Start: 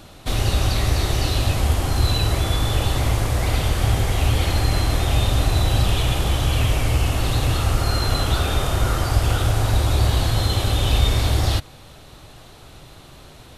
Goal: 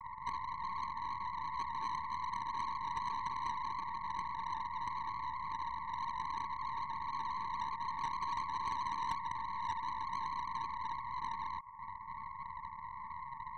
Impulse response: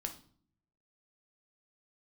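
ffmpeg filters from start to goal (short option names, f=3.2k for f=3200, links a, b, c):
-af "acompressor=threshold=-31dB:ratio=4,asuperpass=centerf=1000:order=20:qfactor=4.1,asoftclip=type=tanh:threshold=-39.5dB,aeval=exprs='0.01*(cos(1*acos(clip(val(0)/0.01,-1,1)))-cos(1*PI/2))+0.00316*(cos(2*acos(clip(val(0)/0.01,-1,1)))-cos(2*PI/2))+0.0002*(cos(5*acos(clip(val(0)/0.01,-1,1)))-cos(5*PI/2))+0.00112*(cos(8*acos(clip(val(0)/0.01,-1,1)))-cos(8*PI/2))':c=same,volume=13dB"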